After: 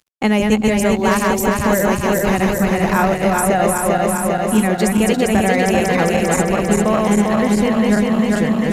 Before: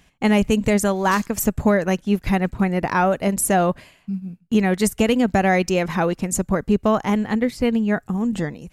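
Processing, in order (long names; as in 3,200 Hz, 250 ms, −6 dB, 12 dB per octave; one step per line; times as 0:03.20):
feedback delay that plays each chunk backwards 199 ms, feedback 81%, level −2 dB
mains-hum notches 60/120/180/240/300 Hz
in parallel at 0 dB: speech leveller within 3 dB 0.5 s
on the sum: dead-zone distortion −42.5 dBFS
multiband upward and downward compressor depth 40%
level −5.5 dB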